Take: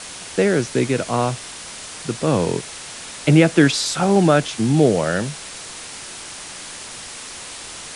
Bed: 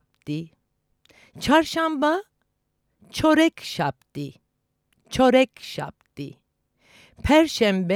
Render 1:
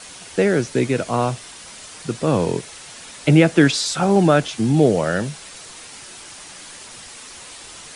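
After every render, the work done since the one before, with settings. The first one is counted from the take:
broadband denoise 6 dB, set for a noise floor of −35 dBFS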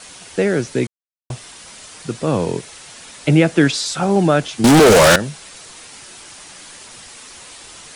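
0:00.87–0:01.30: silence
0:04.64–0:05.16: mid-hump overdrive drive 38 dB, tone 7,900 Hz, clips at −2.5 dBFS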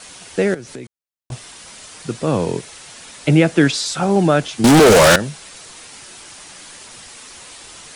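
0:00.54–0:01.32: downward compressor 5 to 1, threshold −30 dBFS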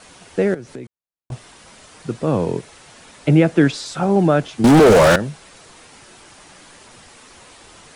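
high-shelf EQ 2,200 Hz −10 dB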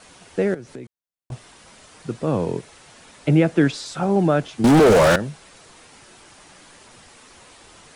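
level −3 dB

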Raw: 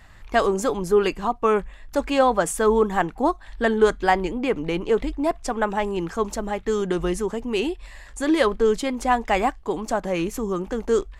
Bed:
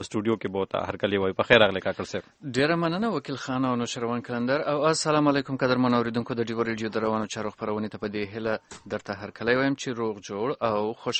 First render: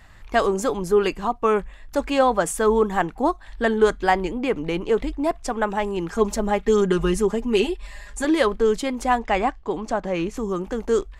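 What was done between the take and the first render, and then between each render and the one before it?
0:06.12–0:08.25: comb filter 4.9 ms, depth 94%
0:09.19–0:10.37: high-frequency loss of the air 70 metres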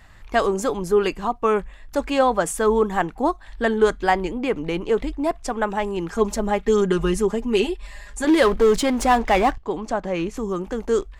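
0:08.27–0:09.58: power curve on the samples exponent 0.7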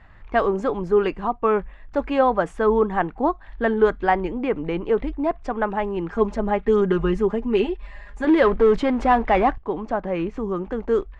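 low-pass filter 2,200 Hz 12 dB per octave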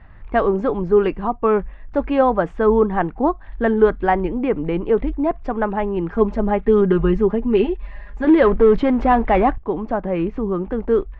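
low-pass filter 3,700 Hz 12 dB per octave
low-shelf EQ 480 Hz +6 dB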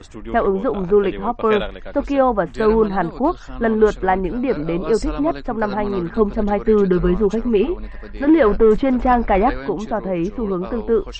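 mix in bed −7.5 dB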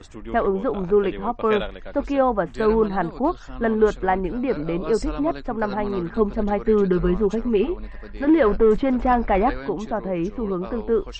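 level −3.5 dB

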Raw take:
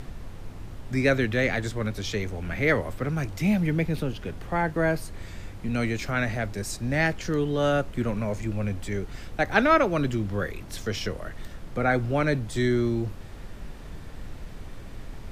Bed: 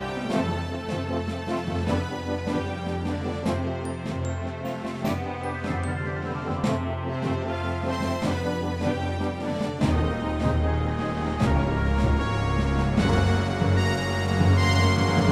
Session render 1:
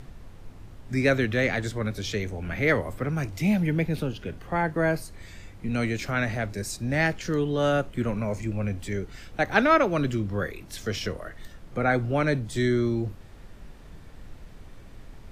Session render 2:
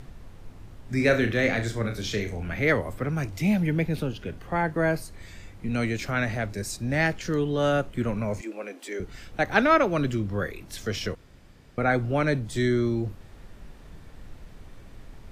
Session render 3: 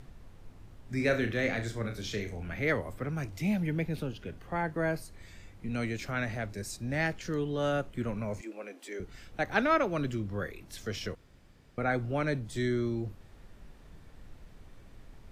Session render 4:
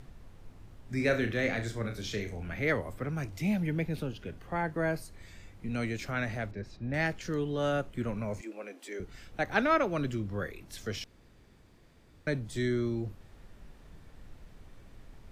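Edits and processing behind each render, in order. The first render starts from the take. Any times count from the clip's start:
noise reduction from a noise print 6 dB
0:00.96–0:02.43: flutter between parallel walls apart 5.9 metres, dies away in 0.29 s; 0:08.41–0:09.00: Butterworth high-pass 280 Hz; 0:11.15–0:11.78: fill with room tone
level −6.5 dB
0:06.51–0:06.94: high-frequency loss of the air 290 metres; 0:11.04–0:12.27: fill with room tone

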